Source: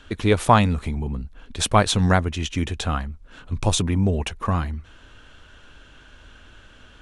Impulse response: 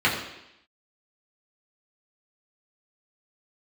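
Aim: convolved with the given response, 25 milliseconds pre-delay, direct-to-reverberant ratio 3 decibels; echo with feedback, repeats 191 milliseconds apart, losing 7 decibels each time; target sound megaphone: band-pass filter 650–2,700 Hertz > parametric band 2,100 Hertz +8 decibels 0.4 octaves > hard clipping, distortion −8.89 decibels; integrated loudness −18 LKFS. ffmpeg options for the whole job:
-filter_complex "[0:a]aecho=1:1:191|382|573|764|955:0.447|0.201|0.0905|0.0407|0.0183,asplit=2[link_01][link_02];[1:a]atrim=start_sample=2205,adelay=25[link_03];[link_02][link_03]afir=irnorm=-1:irlink=0,volume=-20.5dB[link_04];[link_01][link_04]amix=inputs=2:normalize=0,highpass=650,lowpass=2700,equalizer=frequency=2100:width_type=o:width=0.4:gain=8,asoftclip=type=hard:threshold=-15dB,volume=8dB"

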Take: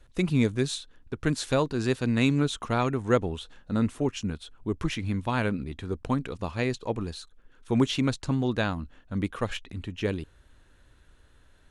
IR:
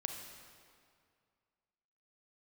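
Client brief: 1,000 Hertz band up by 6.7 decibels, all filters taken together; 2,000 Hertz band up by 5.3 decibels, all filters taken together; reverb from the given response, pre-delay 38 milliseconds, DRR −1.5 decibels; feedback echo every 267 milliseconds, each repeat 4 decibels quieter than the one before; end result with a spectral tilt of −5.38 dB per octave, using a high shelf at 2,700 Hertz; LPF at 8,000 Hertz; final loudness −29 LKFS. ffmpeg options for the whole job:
-filter_complex "[0:a]lowpass=8000,equalizer=frequency=1000:width_type=o:gain=7.5,equalizer=frequency=2000:width_type=o:gain=8,highshelf=frequency=2700:gain=-8.5,aecho=1:1:267|534|801|1068|1335|1602|1869|2136|2403:0.631|0.398|0.25|0.158|0.0994|0.0626|0.0394|0.0249|0.0157,asplit=2[link_01][link_02];[1:a]atrim=start_sample=2205,adelay=38[link_03];[link_02][link_03]afir=irnorm=-1:irlink=0,volume=1.5dB[link_04];[link_01][link_04]amix=inputs=2:normalize=0,volume=-7.5dB"

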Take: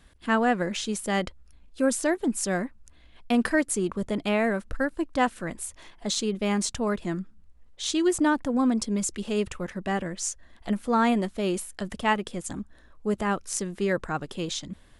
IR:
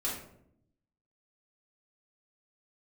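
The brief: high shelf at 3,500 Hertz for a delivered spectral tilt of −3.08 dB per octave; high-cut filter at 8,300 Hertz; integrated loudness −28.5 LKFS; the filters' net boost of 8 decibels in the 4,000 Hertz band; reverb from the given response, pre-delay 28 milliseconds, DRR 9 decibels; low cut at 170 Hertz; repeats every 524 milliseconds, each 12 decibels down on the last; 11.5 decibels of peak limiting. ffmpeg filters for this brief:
-filter_complex "[0:a]highpass=170,lowpass=8300,highshelf=frequency=3500:gain=8.5,equalizer=frequency=4000:width_type=o:gain=4.5,alimiter=limit=-17.5dB:level=0:latency=1,aecho=1:1:524|1048|1572:0.251|0.0628|0.0157,asplit=2[link_01][link_02];[1:a]atrim=start_sample=2205,adelay=28[link_03];[link_02][link_03]afir=irnorm=-1:irlink=0,volume=-13.5dB[link_04];[link_01][link_04]amix=inputs=2:normalize=0,volume=-0.5dB"

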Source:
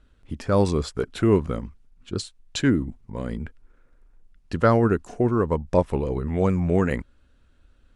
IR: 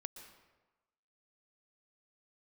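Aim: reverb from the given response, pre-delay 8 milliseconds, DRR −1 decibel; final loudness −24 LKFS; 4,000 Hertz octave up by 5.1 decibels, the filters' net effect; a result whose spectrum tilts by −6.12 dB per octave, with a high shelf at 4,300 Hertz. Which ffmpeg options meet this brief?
-filter_complex "[0:a]equalizer=frequency=4000:width_type=o:gain=3,highshelf=frequency=4300:gain=5.5,asplit=2[link_01][link_02];[1:a]atrim=start_sample=2205,adelay=8[link_03];[link_02][link_03]afir=irnorm=-1:irlink=0,volume=4.5dB[link_04];[link_01][link_04]amix=inputs=2:normalize=0,volume=-4dB"

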